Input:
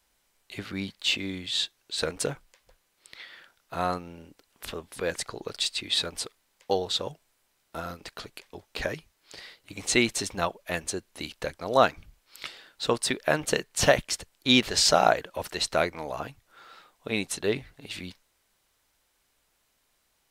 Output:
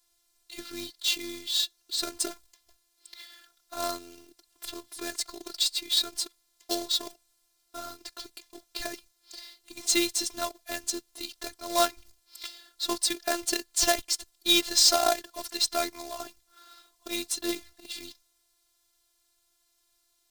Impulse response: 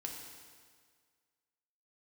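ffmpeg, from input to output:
-af "acrusher=bits=2:mode=log:mix=0:aa=0.000001,afftfilt=real='hypot(re,im)*cos(PI*b)':imag='0':win_size=512:overlap=0.75,highshelf=frequency=3300:width_type=q:width=1.5:gain=6.5,volume=-2dB"

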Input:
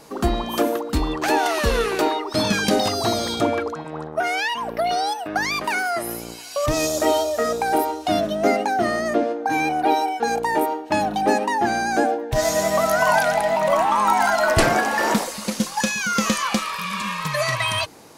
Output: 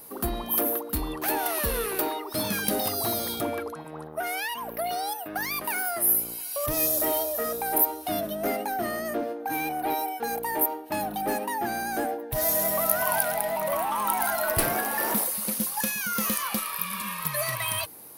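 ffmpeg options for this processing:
ffmpeg -i in.wav -af "asoftclip=type=tanh:threshold=-13dB,aexciter=amount=10.7:drive=7.1:freq=10000,volume=-7.5dB" out.wav

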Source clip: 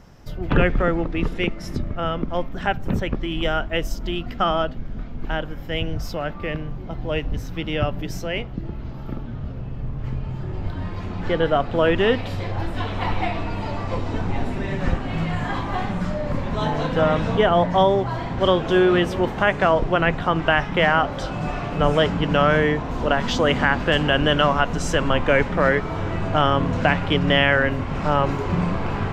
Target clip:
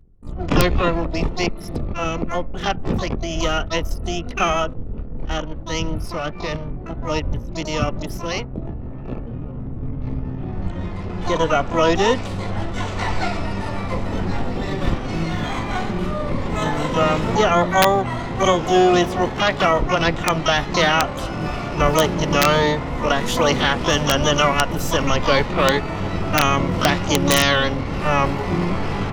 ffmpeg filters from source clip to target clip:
ffmpeg -i in.wav -filter_complex "[0:a]anlmdn=2.51,asplit=2[link_01][link_02];[link_02]asetrate=88200,aresample=44100,atempo=0.5,volume=-4dB[link_03];[link_01][link_03]amix=inputs=2:normalize=0,bandreject=frequency=1600:width=11,aeval=exprs='(mod(1.5*val(0)+1,2)-1)/1.5':channel_layout=same" out.wav

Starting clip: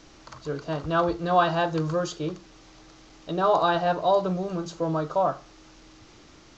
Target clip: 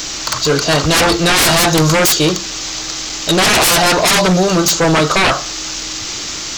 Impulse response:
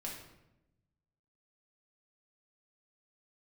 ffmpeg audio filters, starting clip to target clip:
-af "crystalizer=i=9.5:c=0,aeval=exprs='0.794*sin(PI/2*10*val(0)/0.794)':channel_layout=same,volume=-6dB"

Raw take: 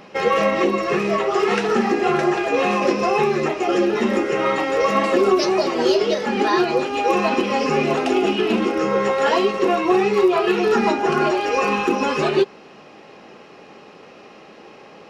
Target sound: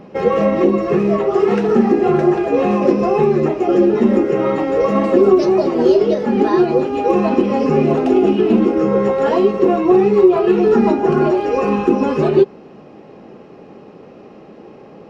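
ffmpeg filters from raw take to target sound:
ffmpeg -i in.wav -af "tiltshelf=frequency=840:gain=9.5" out.wav

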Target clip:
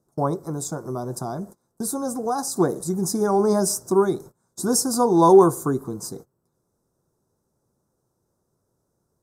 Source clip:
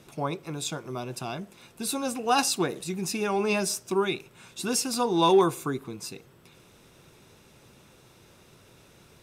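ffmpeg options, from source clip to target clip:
ffmpeg -i in.wav -filter_complex "[0:a]agate=range=-24dB:threshold=-45dB:ratio=16:detection=peak,asplit=3[link_01][link_02][link_03];[link_01]afade=type=out:start_time=0.38:duration=0.02[link_04];[link_02]acompressor=threshold=-32dB:ratio=2.5,afade=type=in:start_time=0.38:duration=0.02,afade=type=out:start_time=2.55:duration=0.02[link_05];[link_03]afade=type=in:start_time=2.55:duration=0.02[link_06];[link_04][link_05][link_06]amix=inputs=3:normalize=0,asuperstop=centerf=2700:order=4:qfactor=0.53,volume=7.5dB" out.wav

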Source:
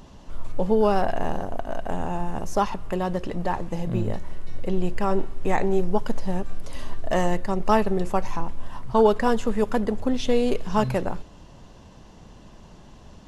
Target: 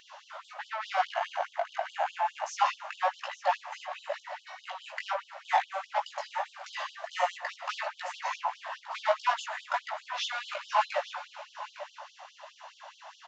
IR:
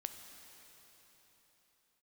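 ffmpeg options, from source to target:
-filter_complex "[0:a]highpass=frequency=130:width=0.5412,highpass=frequency=130:width=1.3066,asplit=2[link_01][link_02];[link_02]highpass=frequency=720:poles=1,volume=26dB,asoftclip=type=tanh:threshold=-6.5dB[link_03];[link_01][link_03]amix=inputs=2:normalize=0,lowpass=frequency=1200:poles=1,volume=-6dB,flanger=delay=16:depth=4.3:speed=1.5,aecho=1:1:857:0.2,asplit=2[link_04][link_05];[1:a]atrim=start_sample=2205[link_06];[link_05][link_06]afir=irnorm=-1:irlink=0,volume=-5.5dB[link_07];[link_04][link_07]amix=inputs=2:normalize=0,aresample=16000,aresample=44100,afftfilt=real='re*gte(b*sr/1024,530*pow(3000/530,0.5+0.5*sin(2*PI*4.8*pts/sr)))':imag='im*gte(b*sr/1024,530*pow(3000/530,0.5+0.5*sin(2*PI*4.8*pts/sr)))':win_size=1024:overlap=0.75,volume=-5.5dB"

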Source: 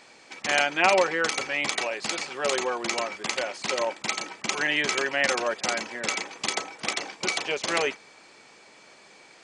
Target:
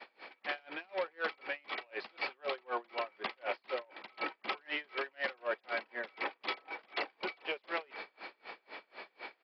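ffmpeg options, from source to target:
ffmpeg -i in.wav -af "aresample=11025,asoftclip=type=tanh:threshold=-22.5dB,aresample=44100,lowpass=3100,agate=range=-33dB:threshold=-51dB:ratio=3:detection=peak,areverse,acompressor=threshold=-42dB:ratio=10,areverse,highpass=360,aeval=exprs='val(0)*pow(10,-33*(0.5-0.5*cos(2*PI*4*n/s))/20)':channel_layout=same,volume=12dB" out.wav

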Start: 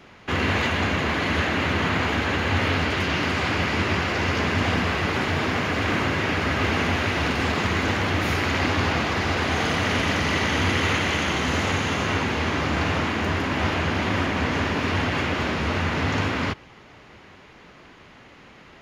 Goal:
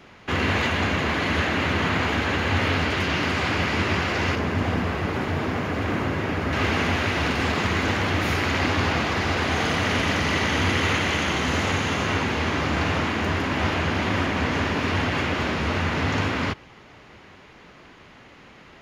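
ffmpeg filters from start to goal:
ffmpeg -i in.wav -filter_complex "[0:a]asettb=1/sr,asplit=3[link_01][link_02][link_03];[link_01]atrim=end=4.354[link_04];[link_02]atrim=start=4.35:end=6.53,asetpts=PTS-STARTPTS,afade=type=in:duration=0.004:curve=qsin,afade=type=out:start_time=2.176:duration=0.004:curve=qsin,equalizer=frequency=4500:width=0.32:gain=-8[link_05];[link_03]atrim=start=6.526[link_06];[link_04][link_05]acrossfade=duration=0.004:curve1=hsin:curve2=qsin[link_07];[link_07][link_06]acrossfade=duration=0.004:curve1=qsin:curve2=hsin" out.wav

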